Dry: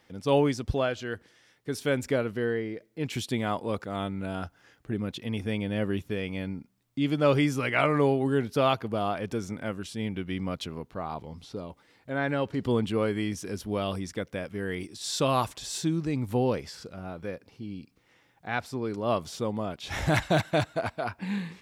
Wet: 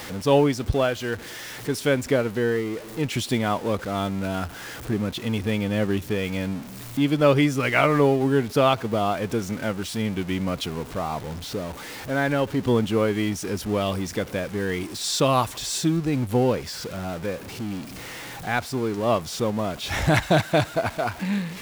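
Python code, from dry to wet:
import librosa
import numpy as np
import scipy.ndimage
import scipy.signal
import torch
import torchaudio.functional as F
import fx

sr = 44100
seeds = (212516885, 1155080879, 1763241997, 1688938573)

y = x + 0.5 * 10.0 ** (-35.5 / 20.0) * np.sign(x)
y = fx.transient(y, sr, attack_db=1, sustain_db=-3)
y = y * 10.0 ** (4.0 / 20.0)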